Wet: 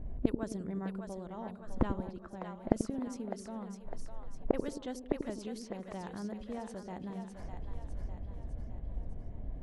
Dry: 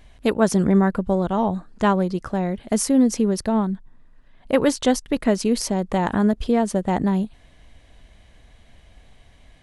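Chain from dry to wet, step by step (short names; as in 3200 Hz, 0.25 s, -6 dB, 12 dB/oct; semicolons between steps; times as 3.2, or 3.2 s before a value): low-pass opened by the level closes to 390 Hz, open at -16 dBFS; flipped gate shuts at -21 dBFS, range -31 dB; split-band echo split 490 Hz, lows 88 ms, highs 0.605 s, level -6 dB; gain +8.5 dB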